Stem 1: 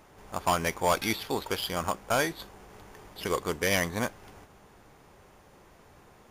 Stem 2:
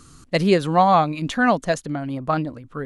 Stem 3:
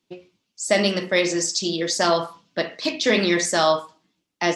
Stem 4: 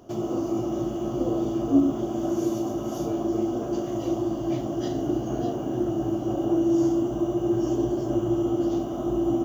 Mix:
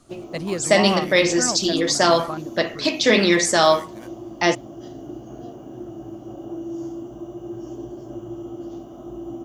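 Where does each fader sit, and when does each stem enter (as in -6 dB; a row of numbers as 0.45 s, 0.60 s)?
-14.5 dB, -10.0 dB, +3.0 dB, -9.5 dB; 0.00 s, 0.00 s, 0.00 s, 0.00 s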